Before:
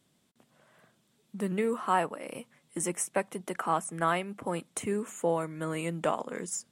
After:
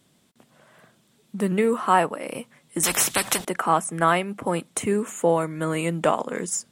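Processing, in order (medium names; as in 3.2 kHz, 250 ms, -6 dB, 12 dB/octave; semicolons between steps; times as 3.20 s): 2.83–3.45 s: spectrum-flattening compressor 4:1; trim +8 dB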